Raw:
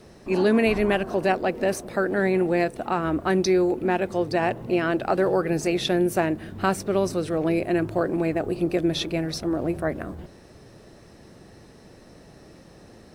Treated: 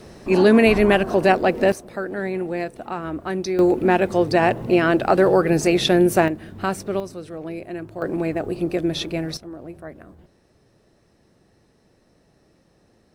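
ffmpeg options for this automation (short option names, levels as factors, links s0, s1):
-af "asetnsamples=n=441:p=0,asendcmd='1.72 volume volume -4dB;3.59 volume volume 6dB;6.28 volume volume -1dB;7 volume volume -8.5dB;8.02 volume volume 0.5dB;9.37 volume volume -11dB',volume=2"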